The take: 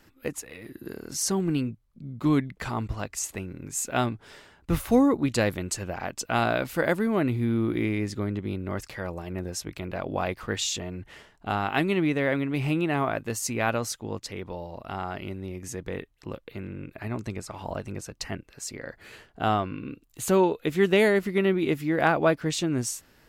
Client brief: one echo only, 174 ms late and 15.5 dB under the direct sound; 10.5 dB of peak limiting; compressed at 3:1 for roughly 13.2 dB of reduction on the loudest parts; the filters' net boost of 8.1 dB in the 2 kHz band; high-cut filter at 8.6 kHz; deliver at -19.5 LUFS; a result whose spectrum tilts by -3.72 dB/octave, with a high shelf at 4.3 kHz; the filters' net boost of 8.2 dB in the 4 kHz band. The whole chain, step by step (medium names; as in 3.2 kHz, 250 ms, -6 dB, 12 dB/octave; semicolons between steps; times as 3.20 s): low-pass 8.6 kHz; peaking EQ 2 kHz +8 dB; peaking EQ 4 kHz +5.5 dB; treble shelf 4.3 kHz +4.5 dB; compression 3:1, threshold -32 dBFS; peak limiter -23.5 dBFS; delay 174 ms -15.5 dB; trim +16 dB